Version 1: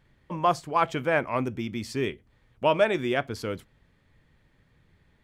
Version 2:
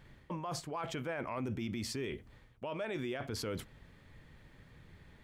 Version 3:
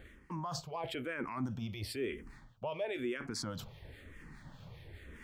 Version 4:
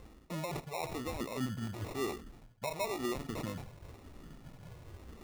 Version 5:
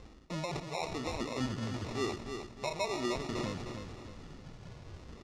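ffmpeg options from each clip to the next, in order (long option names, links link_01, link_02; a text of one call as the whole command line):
ffmpeg -i in.wav -af "areverse,acompressor=threshold=-33dB:ratio=8,areverse,alimiter=level_in=11.5dB:limit=-24dB:level=0:latency=1:release=43,volume=-11.5dB,volume=5.5dB" out.wav
ffmpeg -i in.wav -filter_complex "[0:a]areverse,acompressor=mode=upward:threshold=-42dB:ratio=2.5,areverse,acrossover=split=1400[link_01][link_02];[link_01]aeval=exprs='val(0)*(1-0.5/2+0.5/2*cos(2*PI*4.9*n/s))':channel_layout=same[link_03];[link_02]aeval=exprs='val(0)*(1-0.5/2-0.5/2*cos(2*PI*4.9*n/s))':channel_layout=same[link_04];[link_03][link_04]amix=inputs=2:normalize=0,asplit=2[link_05][link_06];[link_06]afreqshift=-1[link_07];[link_05][link_07]amix=inputs=2:normalize=1,volume=4.5dB" out.wav
ffmpeg -i in.wav -af "acrusher=samples=28:mix=1:aa=0.000001,volume=1dB" out.wav
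ffmpeg -i in.wav -filter_complex "[0:a]lowpass=frequency=5600:width_type=q:width=1.5,asplit=2[link_01][link_02];[link_02]aecho=0:1:308|616|924|1232|1540:0.447|0.183|0.0751|0.0308|0.0126[link_03];[link_01][link_03]amix=inputs=2:normalize=0,volume=1dB" out.wav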